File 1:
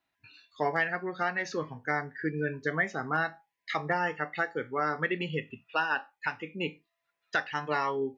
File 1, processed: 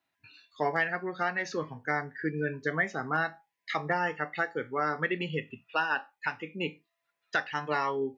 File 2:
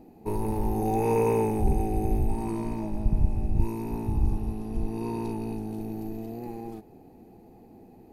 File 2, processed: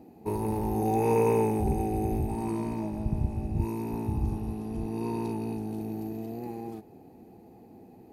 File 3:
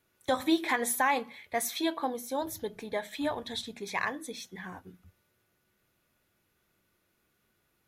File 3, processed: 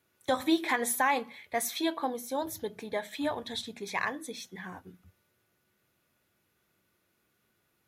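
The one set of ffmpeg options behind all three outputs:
-af "highpass=68"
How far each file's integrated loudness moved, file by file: 0.0, -1.0, 0.0 LU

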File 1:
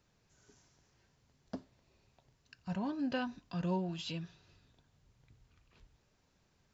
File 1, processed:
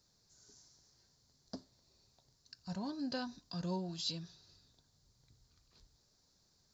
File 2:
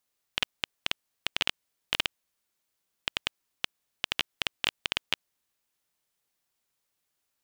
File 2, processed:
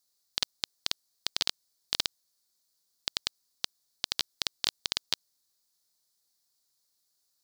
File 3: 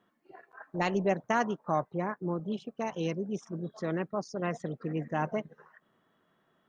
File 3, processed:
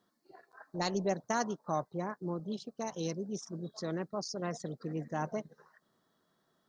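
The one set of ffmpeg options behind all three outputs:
-af "highshelf=f=3.5k:t=q:w=3:g=8,volume=-4dB"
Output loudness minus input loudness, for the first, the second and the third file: -2.5, -0.5, -4.0 LU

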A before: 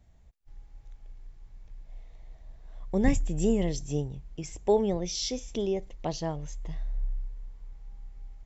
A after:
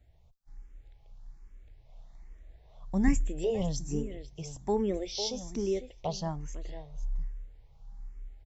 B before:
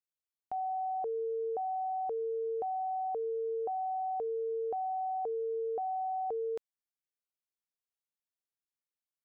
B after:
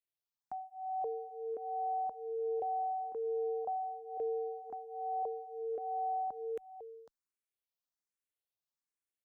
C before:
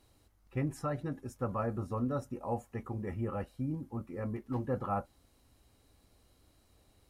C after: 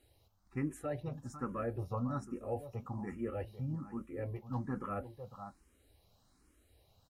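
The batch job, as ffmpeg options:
-filter_complex "[0:a]asplit=2[a][b];[b]aecho=0:1:501:0.237[c];[a][c]amix=inputs=2:normalize=0,asplit=2[d][e];[e]afreqshift=1.2[f];[d][f]amix=inputs=2:normalize=1"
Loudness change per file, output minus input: -3.0, -3.0, -3.5 LU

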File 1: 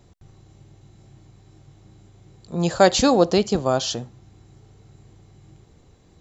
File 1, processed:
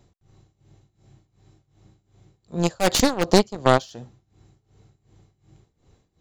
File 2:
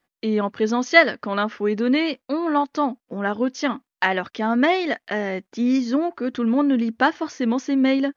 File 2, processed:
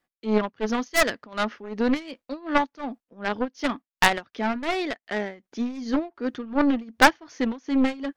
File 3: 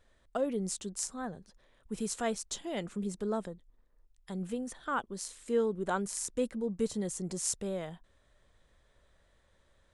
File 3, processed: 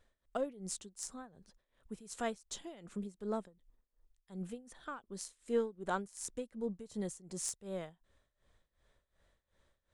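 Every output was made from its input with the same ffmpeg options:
-af "aeval=exprs='0.531*(abs(mod(val(0)/0.531+3,4)-2)-1)':c=same,aeval=exprs='0.562*(cos(1*acos(clip(val(0)/0.562,-1,1)))-cos(1*PI/2))+0.0794*(cos(2*acos(clip(val(0)/0.562,-1,1)))-cos(2*PI/2))+0.2*(cos(6*acos(clip(val(0)/0.562,-1,1)))-cos(6*PI/2))+0.0355*(cos(7*acos(clip(val(0)/0.562,-1,1)))-cos(7*PI/2))+0.126*(cos(8*acos(clip(val(0)/0.562,-1,1)))-cos(8*PI/2))':c=same,tremolo=f=2.7:d=0.88,volume=1.5dB"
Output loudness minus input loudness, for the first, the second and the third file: -1.0, -3.5, -6.0 LU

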